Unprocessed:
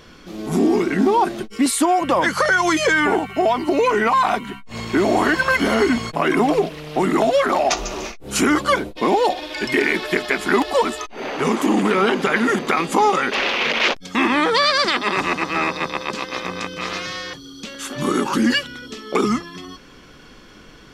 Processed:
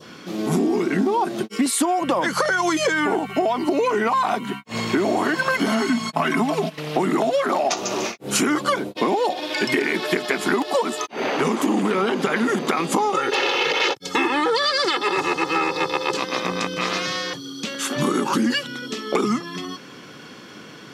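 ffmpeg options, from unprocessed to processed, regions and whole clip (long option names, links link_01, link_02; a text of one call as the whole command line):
ffmpeg -i in.wav -filter_complex "[0:a]asettb=1/sr,asplit=3[link_01][link_02][link_03];[link_01]atrim=end=5.664[link_04];[link_02]atrim=start=5.66:end=6.78,asetpts=PTS-STARTPTS,afade=type=in:duration=0.004:curve=qsin,afade=type=out:start_time=1.116:duration=0.004:curve=qsin,agate=range=-10dB:threshold=-29dB:ratio=16:release=100:detection=peak,equalizer=frequency=450:width_type=o:width=0.56:gain=-12.5,aecho=1:1:4.6:0.59,atrim=end_sample=49392[link_05];[link_03]atrim=start=6.776[link_06];[link_04][link_05]acrossfade=duration=0.004:curve1=hsin:curve2=qsin[link_07];[link_07][link_06]acrossfade=duration=0.004:curve1=qsin:curve2=hsin,asettb=1/sr,asplit=3[link_08][link_09][link_10];[link_08]atrim=end=13.144[link_11];[link_09]atrim=start=13.14:end=16.17,asetpts=PTS-STARTPTS,afade=type=in:duration=0.004:curve=qsin,afade=type=out:start_time=3.026:duration=0.004:curve=qsin,bandreject=frequency=2300:width=17,aecho=1:1:2.3:0.9,atrim=end_sample=133623[link_12];[link_10]atrim=start=16.166[link_13];[link_11][link_12]acrossfade=duration=0.004:curve1=hsin:curve2=qsin[link_14];[link_14][link_13]acrossfade=duration=0.004:curve1=qsin:curve2=hsin,highpass=frequency=120:width=0.5412,highpass=frequency=120:width=1.3066,adynamicequalizer=threshold=0.02:dfrequency=2000:dqfactor=1.1:tfrequency=2000:tqfactor=1.1:attack=5:release=100:ratio=0.375:range=2:mode=cutabove:tftype=bell,acompressor=threshold=-22dB:ratio=6,volume=4.5dB" out.wav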